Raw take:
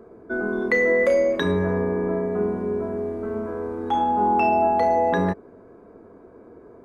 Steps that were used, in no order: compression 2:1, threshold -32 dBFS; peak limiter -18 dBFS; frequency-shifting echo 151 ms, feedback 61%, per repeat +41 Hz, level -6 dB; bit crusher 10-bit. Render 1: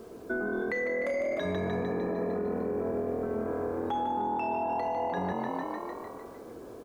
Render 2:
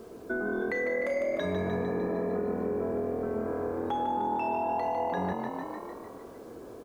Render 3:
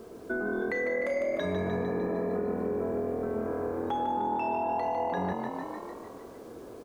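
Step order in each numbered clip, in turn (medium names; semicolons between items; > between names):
frequency-shifting echo > bit crusher > peak limiter > compression; peak limiter > frequency-shifting echo > bit crusher > compression; bit crusher > peak limiter > frequency-shifting echo > compression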